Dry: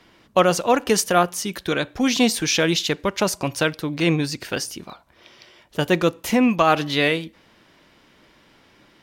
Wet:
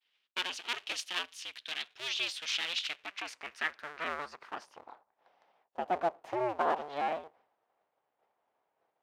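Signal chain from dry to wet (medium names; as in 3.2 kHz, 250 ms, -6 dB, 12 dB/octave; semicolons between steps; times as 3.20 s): cycle switcher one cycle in 2, inverted; band-pass sweep 3.1 kHz -> 770 Hz, 2.78–4.99 s; expander -55 dBFS; trim -6.5 dB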